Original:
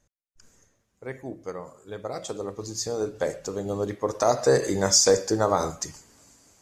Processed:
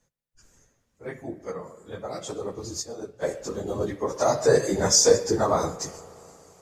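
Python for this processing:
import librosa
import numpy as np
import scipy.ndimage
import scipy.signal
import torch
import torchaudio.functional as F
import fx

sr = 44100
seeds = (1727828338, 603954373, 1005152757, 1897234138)

y = fx.phase_scramble(x, sr, seeds[0], window_ms=50)
y = fx.rev_spring(y, sr, rt60_s=3.1, pass_ms=(34, 58), chirp_ms=40, drr_db=16.5)
y = fx.upward_expand(y, sr, threshold_db=-36.0, expansion=1.5, at=(2.81, 3.22), fade=0.02)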